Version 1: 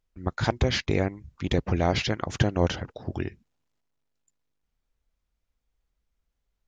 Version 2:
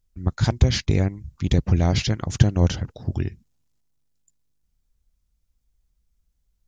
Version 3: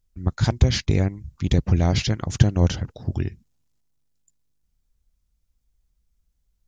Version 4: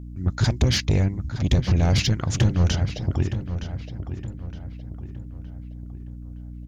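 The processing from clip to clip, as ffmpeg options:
ffmpeg -i in.wav -af "bass=frequency=250:gain=12,treble=frequency=4000:gain=11,volume=-3dB" out.wav
ffmpeg -i in.wav -af anull out.wav
ffmpeg -i in.wav -filter_complex "[0:a]asoftclip=type=tanh:threshold=-16.5dB,asplit=2[link_01][link_02];[link_02]adelay=916,lowpass=frequency=2900:poles=1,volume=-10dB,asplit=2[link_03][link_04];[link_04]adelay=916,lowpass=frequency=2900:poles=1,volume=0.44,asplit=2[link_05][link_06];[link_06]adelay=916,lowpass=frequency=2900:poles=1,volume=0.44,asplit=2[link_07][link_08];[link_08]adelay=916,lowpass=frequency=2900:poles=1,volume=0.44,asplit=2[link_09][link_10];[link_10]adelay=916,lowpass=frequency=2900:poles=1,volume=0.44[link_11];[link_01][link_03][link_05][link_07][link_09][link_11]amix=inputs=6:normalize=0,aeval=exprs='val(0)+0.0112*(sin(2*PI*60*n/s)+sin(2*PI*2*60*n/s)/2+sin(2*PI*3*60*n/s)/3+sin(2*PI*4*60*n/s)/4+sin(2*PI*5*60*n/s)/5)':channel_layout=same,volume=3.5dB" out.wav

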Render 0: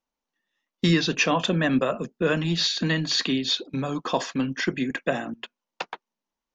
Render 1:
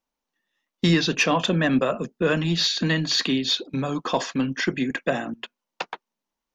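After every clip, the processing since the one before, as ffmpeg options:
ffmpeg -i in.wav -af "acontrast=76,volume=-5dB" out.wav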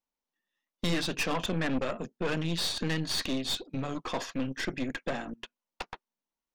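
ffmpeg -i in.wav -af "aeval=exprs='(tanh(12.6*val(0)+0.8)-tanh(0.8))/12.6':channel_layout=same,volume=-3.5dB" out.wav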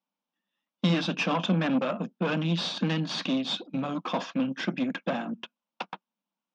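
ffmpeg -i in.wav -af "highpass=frequency=170:width=0.5412,highpass=frequency=170:width=1.3066,equalizer=frequency=190:width_type=q:width=4:gain=9,equalizer=frequency=410:width_type=q:width=4:gain=-9,equalizer=frequency=1900:width_type=q:width=4:gain=-9,equalizer=frequency=4400:width_type=q:width=4:gain=-8,lowpass=frequency=4900:width=0.5412,lowpass=frequency=4900:width=1.3066,volume=5dB" out.wav

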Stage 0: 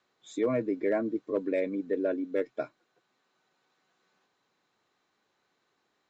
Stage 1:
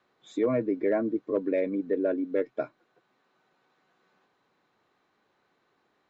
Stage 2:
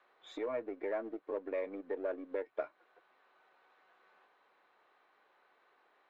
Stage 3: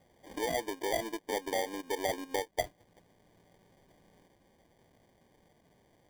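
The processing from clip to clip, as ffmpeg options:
ffmpeg -i in.wav -filter_complex "[0:a]aemphasis=mode=reproduction:type=75fm,asplit=2[link_01][link_02];[link_02]acompressor=threshold=-37dB:ratio=6,volume=-2.5dB[link_03];[link_01][link_03]amix=inputs=2:normalize=0" out.wav
ffmpeg -i in.wav -filter_complex "[0:a]aeval=exprs='if(lt(val(0),0),0.708*val(0),val(0))':channel_layout=same,acompressor=threshold=-36dB:ratio=4,acrossover=split=420 3500:gain=0.0794 1 0.158[link_01][link_02][link_03];[link_01][link_02][link_03]amix=inputs=3:normalize=0,volume=5dB" out.wav
ffmpeg -i in.wav -af "acrusher=samples=33:mix=1:aa=0.000001,volume=4dB" out.wav

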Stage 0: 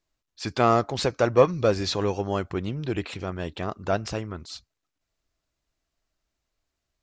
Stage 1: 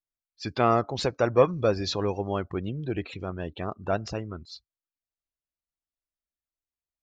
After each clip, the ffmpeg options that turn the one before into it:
ffmpeg -i in.wav -af "afftdn=noise_reduction=19:noise_floor=-39,volume=-2dB" out.wav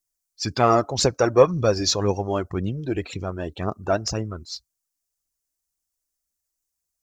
ffmpeg -i in.wav -af "highshelf=frequency=4600:width_type=q:width=1.5:gain=10,aphaser=in_gain=1:out_gain=1:delay=3.5:decay=0.37:speed=1.9:type=triangular,volume=4dB" out.wav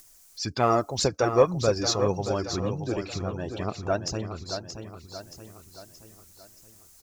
ffmpeg -i in.wav -filter_complex "[0:a]acompressor=mode=upward:threshold=-26dB:ratio=2.5,asplit=2[link_01][link_02];[link_02]aecho=0:1:626|1252|1878|2504|3130:0.376|0.18|0.0866|0.0416|0.02[link_03];[link_01][link_03]amix=inputs=2:normalize=0,volume=-4.5dB" out.wav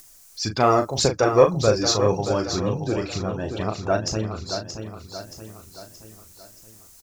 ffmpeg -i in.wav -filter_complex "[0:a]asplit=2[link_01][link_02];[link_02]adelay=37,volume=-7.5dB[link_03];[link_01][link_03]amix=inputs=2:normalize=0,volume=4dB" out.wav

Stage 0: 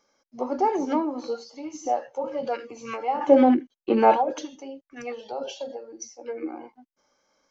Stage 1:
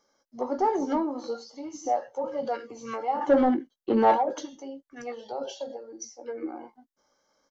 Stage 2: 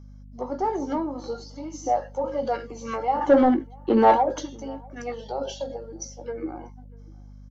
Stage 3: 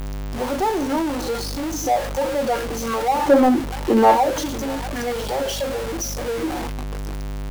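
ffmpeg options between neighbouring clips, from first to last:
ffmpeg -i in.wav -filter_complex "[0:a]asoftclip=type=tanh:threshold=-12.5dB,equalizer=frequency=2500:width_type=o:width=0.24:gain=-14,asplit=2[link_01][link_02];[link_02]adelay=18,volume=-11dB[link_03];[link_01][link_03]amix=inputs=2:normalize=0,volume=-1.5dB" out.wav
ffmpeg -i in.wav -filter_complex "[0:a]dynaudnorm=framelen=340:gausssize=9:maxgain=5.5dB,aeval=exprs='val(0)+0.00794*(sin(2*PI*50*n/s)+sin(2*PI*2*50*n/s)/2+sin(2*PI*3*50*n/s)/3+sin(2*PI*4*50*n/s)/4+sin(2*PI*5*50*n/s)/5)':channel_layout=same,asplit=2[link_01][link_02];[link_02]adelay=641.4,volume=-26dB,highshelf=frequency=4000:gain=-14.4[link_03];[link_01][link_03]amix=inputs=2:normalize=0,volume=-1.5dB" out.wav
ffmpeg -i in.wav -af "aeval=exprs='val(0)+0.5*0.0596*sgn(val(0))':channel_layout=same,volume=1.5dB" out.wav

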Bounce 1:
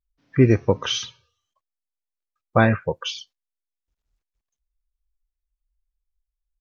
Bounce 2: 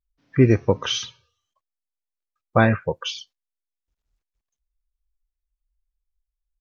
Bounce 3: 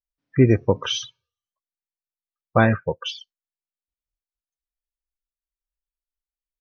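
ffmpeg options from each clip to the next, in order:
ffmpeg -i in.wav -af anull out.wav
ffmpeg -i in.wav -af "afftdn=noise_reduction=17:noise_floor=-32" out.wav

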